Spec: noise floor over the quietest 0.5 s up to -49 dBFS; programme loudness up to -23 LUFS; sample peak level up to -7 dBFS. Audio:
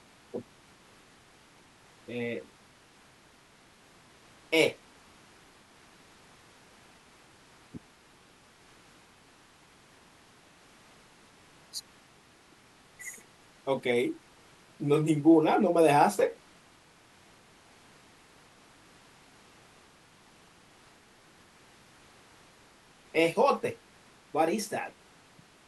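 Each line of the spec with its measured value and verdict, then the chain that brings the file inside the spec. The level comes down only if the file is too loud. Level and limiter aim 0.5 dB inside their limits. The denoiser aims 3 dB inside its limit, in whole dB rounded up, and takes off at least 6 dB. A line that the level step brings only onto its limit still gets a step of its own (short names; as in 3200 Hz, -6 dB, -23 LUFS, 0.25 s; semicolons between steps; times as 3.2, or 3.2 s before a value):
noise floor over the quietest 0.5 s -59 dBFS: OK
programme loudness -28.0 LUFS: OK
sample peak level -10.0 dBFS: OK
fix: none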